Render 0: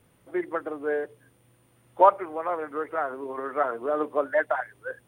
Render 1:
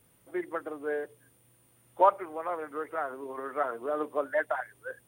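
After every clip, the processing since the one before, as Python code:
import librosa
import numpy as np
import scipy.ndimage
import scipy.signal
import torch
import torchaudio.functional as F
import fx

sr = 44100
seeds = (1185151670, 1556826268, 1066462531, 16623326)

y = fx.high_shelf(x, sr, hz=5700.0, db=11.5)
y = F.gain(torch.from_numpy(y), -5.0).numpy()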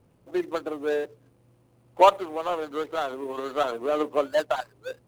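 y = scipy.signal.medfilt(x, 25)
y = F.gain(torch.from_numpy(y), 7.0).numpy()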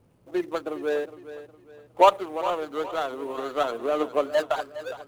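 y = fx.echo_feedback(x, sr, ms=411, feedback_pct=36, wet_db=-14.0)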